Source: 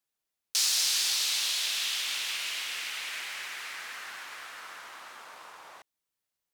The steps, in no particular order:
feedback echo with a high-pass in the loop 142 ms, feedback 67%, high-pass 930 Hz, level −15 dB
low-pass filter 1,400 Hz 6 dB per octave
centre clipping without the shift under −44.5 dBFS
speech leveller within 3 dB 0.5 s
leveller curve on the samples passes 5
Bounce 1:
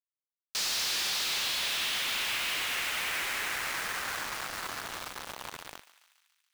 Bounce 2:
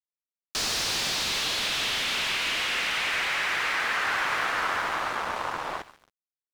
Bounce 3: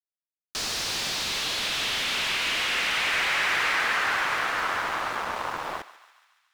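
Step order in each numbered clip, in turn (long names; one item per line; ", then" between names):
low-pass filter, then centre clipping without the shift, then speech leveller, then leveller curve on the samples, then feedback echo with a high-pass in the loop
leveller curve on the samples, then feedback echo with a high-pass in the loop, then centre clipping without the shift, then low-pass filter, then speech leveller
leveller curve on the samples, then speech leveller, then low-pass filter, then centre clipping without the shift, then feedback echo with a high-pass in the loop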